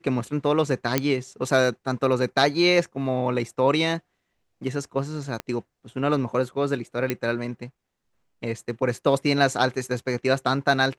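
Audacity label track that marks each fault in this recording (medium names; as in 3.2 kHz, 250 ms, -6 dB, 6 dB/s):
0.980000	0.980000	pop -5 dBFS
5.400000	5.400000	pop -15 dBFS
7.100000	7.100000	pop -10 dBFS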